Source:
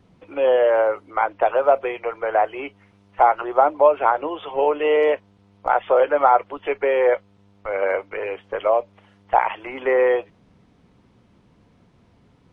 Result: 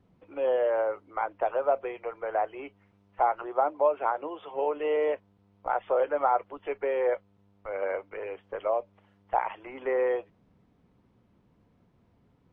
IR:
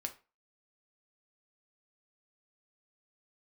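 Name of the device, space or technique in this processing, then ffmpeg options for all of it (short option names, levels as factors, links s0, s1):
behind a face mask: -filter_complex "[0:a]asettb=1/sr,asplit=3[s0][s1][s2];[s0]atrim=end=3.474[s3];[s1]atrim=start=3.47:end=4.77,asetpts=PTS-STARTPTS,afade=t=in:d=0.004:c=qsin,afade=t=out:st=1.296:d=0.004:c=qsin,highpass=f=140:p=1[s4];[s2]atrim=start=4.766[s5];[s3][s4]acrossfade=d=0.004:c1=hsin:c2=qsin[s6];[s6][s5]acrossfade=d=0.004:c1=qsin:c2=hsin,highshelf=f=2300:g=-8,volume=0.376"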